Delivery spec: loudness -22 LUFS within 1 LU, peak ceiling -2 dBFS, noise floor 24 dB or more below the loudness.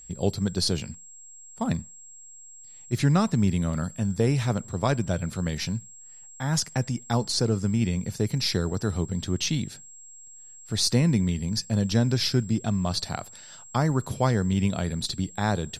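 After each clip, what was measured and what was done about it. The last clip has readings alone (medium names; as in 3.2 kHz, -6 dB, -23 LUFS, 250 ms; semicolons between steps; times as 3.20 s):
steady tone 7.6 kHz; tone level -45 dBFS; loudness -26.5 LUFS; peak level -9.0 dBFS; loudness target -22.0 LUFS
-> band-stop 7.6 kHz, Q 30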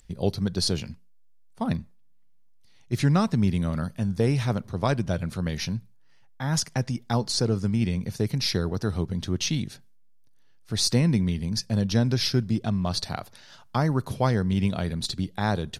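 steady tone not found; loudness -26.5 LUFS; peak level -9.5 dBFS; loudness target -22.0 LUFS
-> trim +4.5 dB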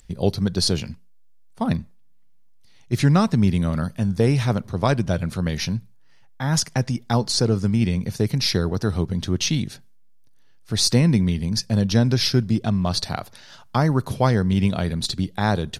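loudness -22.0 LUFS; peak level -5.0 dBFS; noise floor -48 dBFS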